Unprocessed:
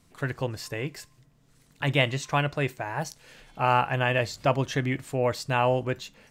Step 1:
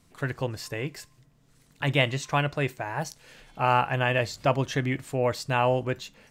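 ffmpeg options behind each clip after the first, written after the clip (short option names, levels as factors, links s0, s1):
-af anull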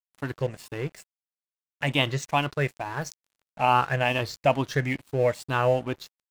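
-af "afftfilt=real='re*pow(10,9/40*sin(2*PI*(0.56*log(max(b,1)*sr/1024/100)/log(2)-(2.3)*(pts-256)/sr)))':imag='im*pow(10,9/40*sin(2*PI*(0.56*log(max(b,1)*sr/1024/100)/log(2)-(2.3)*(pts-256)/sr)))':win_size=1024:overlap=0.75,aeval=exprs='sgn(val(0))*max(abs(val(0))-0.00794,0)':c=same"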